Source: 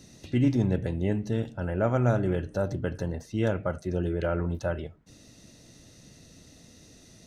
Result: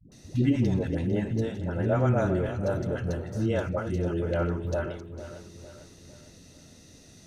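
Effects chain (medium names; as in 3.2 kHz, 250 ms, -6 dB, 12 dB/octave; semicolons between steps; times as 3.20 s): backward echo that repeats 226 ms, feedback 68%, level -11 dB; phase dispersion highs, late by 119 ms, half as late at 370 Hz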